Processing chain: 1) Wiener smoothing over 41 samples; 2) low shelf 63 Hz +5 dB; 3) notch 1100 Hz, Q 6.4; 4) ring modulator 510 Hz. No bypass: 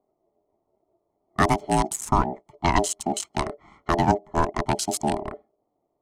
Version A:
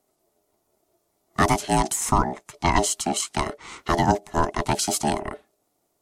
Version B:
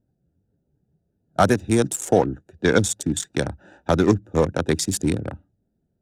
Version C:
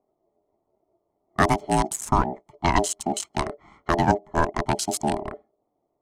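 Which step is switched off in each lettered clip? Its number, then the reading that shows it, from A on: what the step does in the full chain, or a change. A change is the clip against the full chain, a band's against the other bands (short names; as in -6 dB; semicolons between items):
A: 1, 8 kHz band +4.0 dB; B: 4, crest factor change -2.5 dB; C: 3, 2 kHz band +1.5 dB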